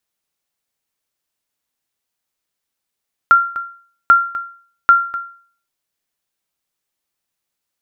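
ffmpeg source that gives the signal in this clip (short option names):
-f lavfi -i "aevalsrc='0.794*(sin(2*PI*1380*mod(t,0.79))*exp(-6.91*mod(t,0.79)/0.48)+0.158*sin(2*PI*1380*max(mod(t,0.79)-0.25,0))*exp(-6.91*max(mod(t,0.79)-0.25,0)/0.48))':d=2.37:s=44100"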